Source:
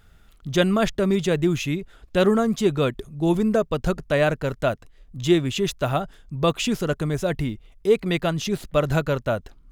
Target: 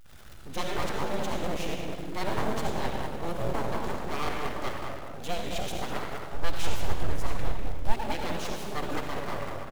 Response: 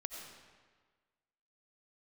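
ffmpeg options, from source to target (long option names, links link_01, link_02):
-filter_complex "[0:a]aeval=exprs='val(0)+0.5*0.0211*sgn(val(0))':channel_layout=same,asplit=2[link_01][link_02];[link_02]adelay=198,lowpass=frequency=1600:poles=1,volume=-4dB,asplit=2[link_03][link_04];[link_04]adelay=198,lowpass=frequency=1600:poles=1,volume=0.48,asplit=2[link_05][link_06];[link_06]adelay=198,lowpass=frequency=1600:poles=1,volume=0.48,asplit=2[link_07][link_08];[link_08]adelay=198,lowpass=frequency=1600:poles=1,volume=0.48,asplit=2[link_09][link_10];[link_10]adelay=198,lowpass=frequency=1600:poles=1,volume=0.48,asplit=2[link_11][link_12];[link_12]adelay=198,lowpass=frequency=1600:poles=1,volume=0.48[link_13];[link_03][link_05][link_07][link_09][link_11][link_13]amix=inputs=6:normalize=0[link_14];[link_01][link_14]amix=inputs=2:normalize=0[link_15];[1:a]atrim=start_sample=2205,asetrate=57330,aresample=44100[link_16];[link_15][link_16]afir=irnorm=-1:irlink=0,asplit=2[link_17][link_18];[link_18]acrusher=bits=3:mode=log:mix=0:aa=0.000001,volume=-8dB[link_19];[link_17][link_19]amix=inputs=2:normalize=0,aeval=exprs='abs(val(0))':channel_layout=same,asplit=3[link_20][link_21][link_22];[link_20]afade=type=out:start_time=6.34:duration=0.02[link_23];[link_21]asubboost=boost=5:cutoff=99,afade=type=in:start_time=6.34:duration=0.02,afade=type=out:start_time=7.91:duration=0.02[link_24];[link_22]afade=type=in:start_time=7.91:duration=0.02[link_25];[link_23][link_24][link_25]amix=inputs=3:normalize=0,volume=-7.5dB"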